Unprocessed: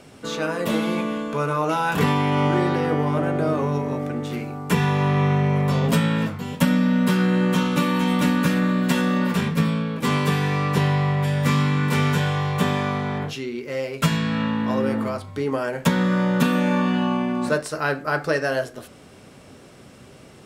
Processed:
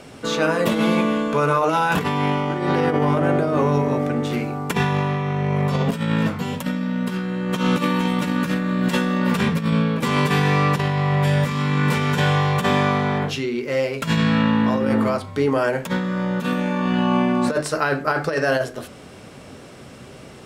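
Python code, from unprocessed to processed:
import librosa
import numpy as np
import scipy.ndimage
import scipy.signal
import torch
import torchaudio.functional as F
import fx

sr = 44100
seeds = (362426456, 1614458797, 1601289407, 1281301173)

y = fx.high_shelf(x, sr, hz=8400.0, db=-4.5)
y = fx.hum_notches(y, sr, base_hz=50, count=8)
y = fx.over_compress(y, sr, threshold_db=-23.0, ratio=-0.5)
y = y * librosa.db_to_amplitude(4.0)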